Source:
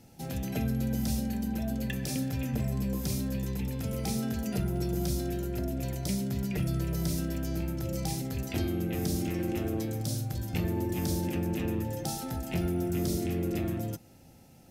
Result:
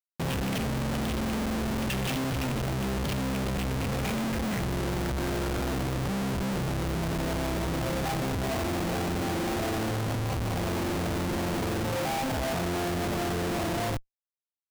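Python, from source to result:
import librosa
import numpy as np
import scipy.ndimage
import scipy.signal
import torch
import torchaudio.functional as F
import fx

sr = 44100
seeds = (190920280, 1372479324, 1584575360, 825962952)

y = fx.filter_sweep_lowpass(x, sr, from_hz=3000.0, to_hz=720.0, start_s=3.54, end_s=7.27, q=5.9)
y = fx.schmitt(y, sr, flips_db=-40.0)
y = y * 10.0 ** (1.0 / 20.0)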